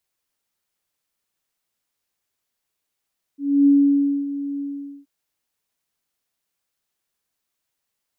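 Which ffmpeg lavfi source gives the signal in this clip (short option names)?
-f lavfi -i "aevalsrc='0.316*sin(2*PI*282*t)':d=1.676:s=44100,afade=t=in:d=0.284,afade=t=out:st=0.284:d=0.594:silence=0.2,afade=t=out:st=1.22:d=0.456"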